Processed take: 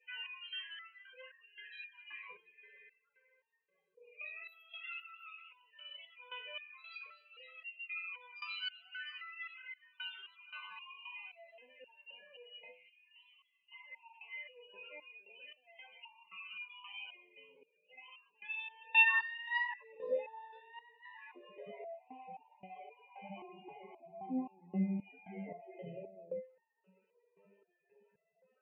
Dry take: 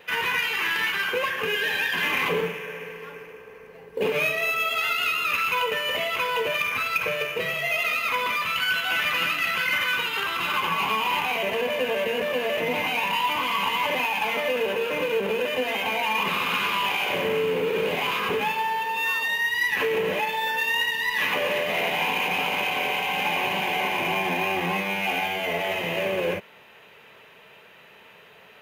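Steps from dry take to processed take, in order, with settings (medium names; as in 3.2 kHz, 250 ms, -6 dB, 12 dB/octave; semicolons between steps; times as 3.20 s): 12.71–13.72 s: amplifier tone stack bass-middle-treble 6-0-2; peak limiter -17 dBFS, peak gain reduction 5.5 dB; compression, threshold -24 dBFS, peak gain reduction 3.5 dB; loudest bins only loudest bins 16; band-pass sweep 7.1 kHz -> 230 Hz, 18.20–20.79 s; feedback echo behind a high-pass 232 ms, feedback 71%, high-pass 5.3 kHz, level -16 dB; resonator arpeggio 3.8 Hz 100–910 Hz; trim +12.5 dB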